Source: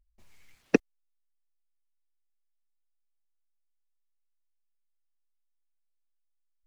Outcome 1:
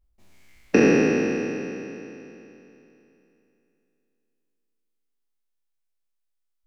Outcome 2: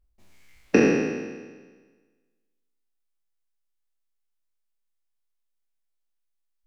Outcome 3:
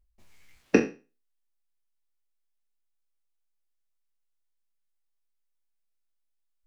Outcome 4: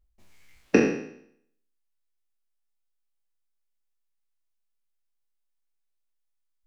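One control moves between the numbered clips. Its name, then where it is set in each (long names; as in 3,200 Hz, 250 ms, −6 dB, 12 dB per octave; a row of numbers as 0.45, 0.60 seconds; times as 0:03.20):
peak hold with a decay on every bin, RT60: 3.05, 1.42, 0.31, 0.67 seconds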